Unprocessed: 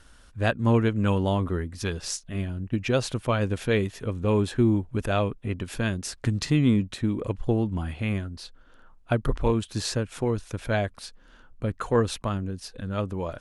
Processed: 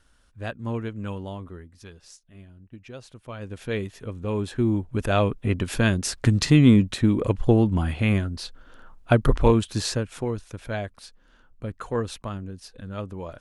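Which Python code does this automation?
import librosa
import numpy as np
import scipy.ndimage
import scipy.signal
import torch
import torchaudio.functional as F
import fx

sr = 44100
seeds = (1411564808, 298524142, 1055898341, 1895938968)

y = fx.gain(x, sr, db=fx.line((1.03, -8.5), (2.09, -17.0), (3.13, -17.0), (3.73, -4.5), (4.32, -4.5), (5.46, 6.0), (9.46, 6.0), (10.54, -4.5)))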